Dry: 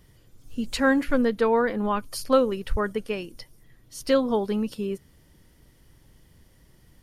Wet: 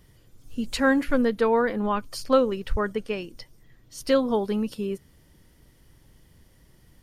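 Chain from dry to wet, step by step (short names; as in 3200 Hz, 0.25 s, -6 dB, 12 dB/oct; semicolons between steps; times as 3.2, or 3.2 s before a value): 1.79–3.98 bell 11000 Hz -14 dB 0.27 oct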